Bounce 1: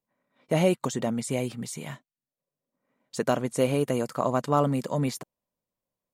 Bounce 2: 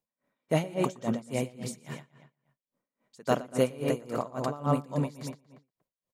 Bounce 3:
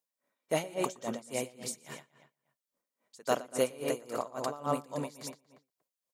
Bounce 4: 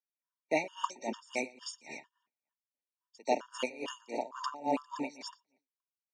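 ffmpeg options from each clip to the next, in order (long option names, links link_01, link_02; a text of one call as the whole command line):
ffmpeg -i in.wav -filter_complex "[0:a]asplit=2[link_01][link_02];[link_02]adelay=118,lowpass=frequency=4800:poles=1,volume=-3dB,asplit=2[link_03][link_04];[link_04]adelay=118,lowpass=frequency=4800:poles=1,volume=0.42,asplit=2[link_05][link_06];[link_06]adelay=118,lowpass=frequency=4800:poles=1,volume=0.42,asplit=2[link_07][link_08];[link_08]adelay=118,lowpass=frequency=4800:poles=1,volume=0.42,asplit=2[link_09][link_10];[link_10]adelay=118,lowpass=frequency=4800:poles=1,volume=0.42[link_11];[link_01][link_03][link_05][link_07][link_09][link_11]amix=inputs=6:normalize=0,aeval=exprs='val(0)*pow(10,-23*(0.5-0.5*cos(2*PI*3.6*n/s))/20)':channel_layout=same" out.wav
ffmpeg -i in.wav -af "bass=frequency=250:gain=-12,treble=frequency=4000:gain=6,volume=-2dB" out.wav
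ffmpeg -i in.wav -af "agate=range=-17dB:threshold=-55dB:ratio=16:detection=peak,highpass=frequency=210:width=0.5412,highpass=frequency=210:width=1.3066,equalizer=frequency=290:width_type=q:width=4:gain=4,equalizer=frequency=490:width_type=q:width=4:gain=-4,equalizer=frequency=930:width_type=q:width=4:gain=8,equalizer=frequency=2400:width_type=q:width=4:gain=10,equalizer=frequency=5600:width_type=q:width=4:gain=8,lowpass=frequency=6600:width=0.5412,lowpass=frequency=6600:width=1.3066,afftfilt=real='re*gt(sin(2*PI*2.2*pts/sr)*(1-2*mod(floor(b*sr/1024/920),2)),0)':imag='im*gt(sin(2*PI*2.2*pts/sr)*(1-2*mod(floor(b*sr/1024/920),2)),0)':win_size=1024:overlap=0.75" out.wav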